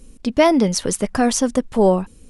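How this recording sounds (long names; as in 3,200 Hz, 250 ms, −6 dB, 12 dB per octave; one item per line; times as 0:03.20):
background noise floor −47 dBFS
spectral slope −4.5 dB per octave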